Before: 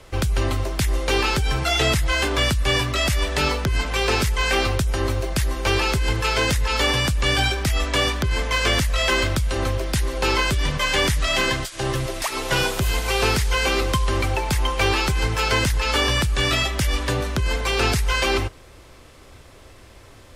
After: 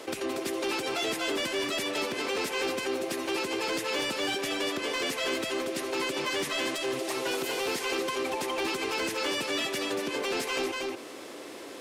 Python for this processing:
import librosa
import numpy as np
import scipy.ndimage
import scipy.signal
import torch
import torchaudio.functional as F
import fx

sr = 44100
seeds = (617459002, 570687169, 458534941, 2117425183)

y = fx.rattle_buzz(x, sr, strikes_db=-29.0, level_db=-27.0)
y = fx.ladder_highpass(y, sr, hz=250.0, resonance_pct=40)
y = fx.peak_eq(y, sr, hz=1300.0, db=-2.5, octaves=0.84)
y = fx.stretch_vocoder(y, sr, factor=0.58)
y = 10.0 ** (-25.5 / 20.0) * np.tanh(y / 10.0 ** (-25.5 / 20.0))
y = y + 10.0 ** (-6.0 / 20.0) * np.pad(y, (int(235 * sr / 1000.0), 0))[:len(y)]
y = fx.env_flatten(y, sr, amount_pct=50)